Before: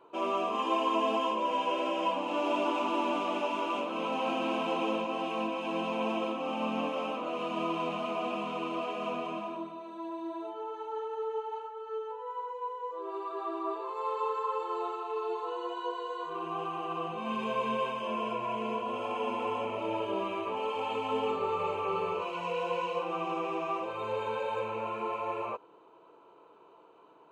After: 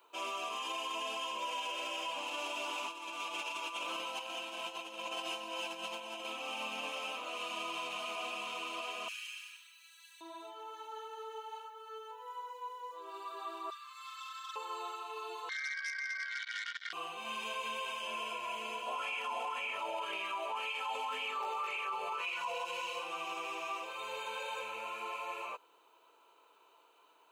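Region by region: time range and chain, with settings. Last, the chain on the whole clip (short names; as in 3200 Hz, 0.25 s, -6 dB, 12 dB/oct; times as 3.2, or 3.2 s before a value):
2.87–6.25 comb 5.9 ms, depth 56% + negative-ratio compressor -33 dBFS, ratio -0.5
9.08–10.21 elliptic high-pass 1600 Hz, stop band 60 dB + high shelf 5300 Hz +7.5 dB + notch 3600 Hz
13.7–14.56 Chebyshev high-pass 1100 Hz, order 8 + core saturation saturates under 1500 Hz
15.49–16.93 HPF 330 Hz + inverted band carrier 2600 Hz + core saturation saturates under 2100 Hz
18.87–22.65 hard clip -22.5 dBFS + LFO bell 1.9 Hz 670–2400 Hz +15 dB
whole clip: differentiator; notch 1100 Hz, Q 30; limiter -41 dBFS; gain +11 dB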